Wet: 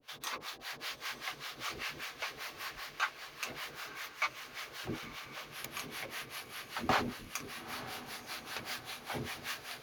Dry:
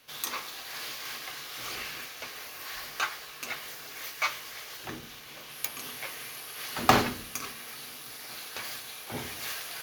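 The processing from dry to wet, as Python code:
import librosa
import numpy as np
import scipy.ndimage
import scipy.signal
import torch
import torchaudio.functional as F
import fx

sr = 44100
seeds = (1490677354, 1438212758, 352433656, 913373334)

y = fx.harmonic_tremolo(x, sr, hz=5.1, depth_pct=100, crossover_hz=560.0)
y = fx.rider(y, sr, range_db=4, speed_s=0.5)
y = fx.lowpass(y, sr, hz=3500.0, slope=6)
y = fx.echo_diffused(y, sr, ms=920, feedback_pct=58, wet_db=-12.5)
y = F.gain(torch.from_numpy(y), 1.0).numpy()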